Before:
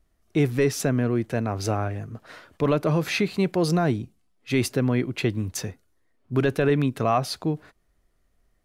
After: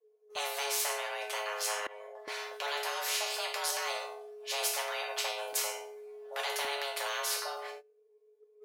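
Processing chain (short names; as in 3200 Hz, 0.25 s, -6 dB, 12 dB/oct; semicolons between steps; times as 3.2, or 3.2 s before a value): low shelf 170 Hz +11.5 dB; resonator bank A3 minor, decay 0.37 s; de-hum 78.64 Hz, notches 28; frequency shift +420 Hz; 5.48–6.65 flutter echo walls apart 8.2 m, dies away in 0.21 s; gate -57 dBFS, range -26 dB; 1.8–2.28 level quantiser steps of 23 dB; spectral compressor 4:1; gain +9 dB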